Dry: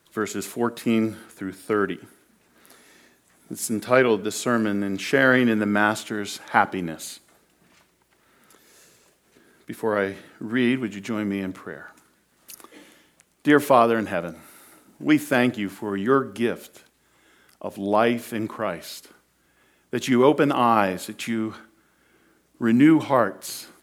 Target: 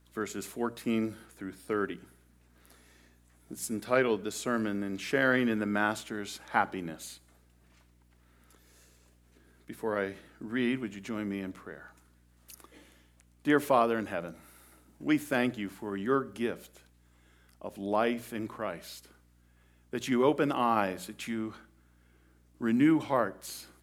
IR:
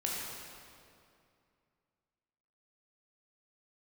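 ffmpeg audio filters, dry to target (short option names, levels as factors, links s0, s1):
-af "bandreject=f=60:t=h:w=6,bandreject=f=120:t=h:w=6,bandreject=f=180:t=h:w=6,aeval=exprs='val(0)+0.002*(sin(2*PI*60*n/s)+sin(2*PI*2*60*n/s)/2+sin(2*PI*3*60*n/s)/3+sin(2*PI*4*60*n/s)/4+sin(2*PI*5*60*n/s)/5)':c=same,volume=0.376"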